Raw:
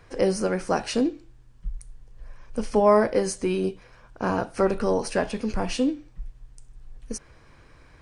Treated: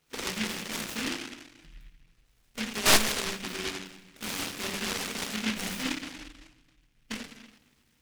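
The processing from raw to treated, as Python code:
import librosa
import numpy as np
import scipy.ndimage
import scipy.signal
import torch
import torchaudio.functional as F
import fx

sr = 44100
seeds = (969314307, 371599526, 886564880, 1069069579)

y = fx.highpass(x, sr, hz=300.0, slope=6)
y = fx.high_shelf(y, sr, hz=3200.0, db=-4.0)
y = fx.level_steps(y, sr, step_db=18)
y = 10.0 ** (-21.0 / 20.0) * np.tanh(y / 10.0 ** (-21.0 / 20.0))
y = fx.spacing_loss(y, sr, db_at_10k=29)
y = fx.room_shoebox(y, sr, seeds[0], volume_m3=290.0, walls='mixed', distance_m=1.5)
y = fx.noise_mod_delay(y, sr, seeds[1], noise_hz=2300.0, depth_ms=0.5)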